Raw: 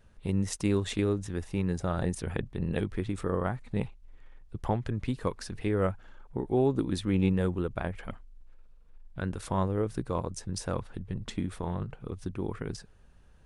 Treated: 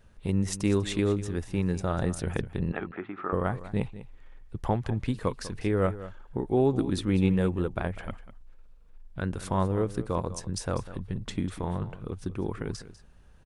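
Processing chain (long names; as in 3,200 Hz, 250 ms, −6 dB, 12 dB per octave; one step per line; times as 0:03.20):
0:02.72–0:03.33: loudspeaker in its box 360–2,400 Hz, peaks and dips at 490 Hz −10 dB, 770 Hz +6 dB, 1,300 Hz +9 dB
on a send: single-tap delay 197 ms −15 dB
on the sum: level +2 dB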